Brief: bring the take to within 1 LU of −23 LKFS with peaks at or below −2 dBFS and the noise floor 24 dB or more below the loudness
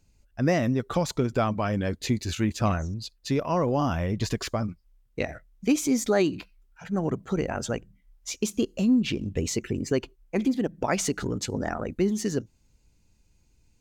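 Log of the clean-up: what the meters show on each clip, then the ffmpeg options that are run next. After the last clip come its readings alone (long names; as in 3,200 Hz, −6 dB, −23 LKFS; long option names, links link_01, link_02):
integrated loudness −27.5 LKFS; sample peak −10.5 dBFS; target loudness −23.0 LKFS
→ -af "volume=4.5dB"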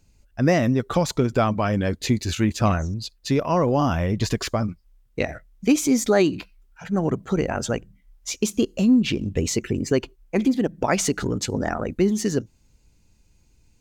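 integrated loudness −23.0 LKFS; sample peak −6.0 dBFS; background noise floor −60 dBFS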